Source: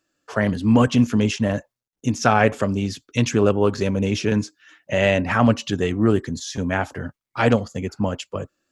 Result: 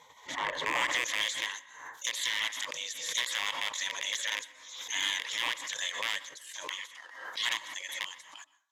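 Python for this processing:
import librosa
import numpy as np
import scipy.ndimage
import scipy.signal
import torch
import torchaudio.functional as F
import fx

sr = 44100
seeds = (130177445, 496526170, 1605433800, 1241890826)

y = fx.rattle_buzz(x, sr, strikes_db=-21.0, level_db=-13.0)
y = fx.spec_gate(y, sr, threshold_db=-20, keep='weak')
y = fx.ripple_eq(y, sr, per_octave=1.1, db=11)
y = fx.leveller(y, sr, passes=1)
y = fx.filter_sweep_bandpass(y, sr, from_hz=490.0, to_hz=4600.0, start_s=0.1, end_s=1.36, q=0.71)
y = 10.0 ** (-21.0 / 20.0) * np.tanh(y / 10.0 ** (-21.0 / 20.0))
y = fx.rev_plate(y, sr, seeds[0], rt60_s=0.55, hf_ratio=0.5, predelay_ms=110, drr_db=18.0)
y = fx.pre_swell(y, sr, db_per_s=59.0)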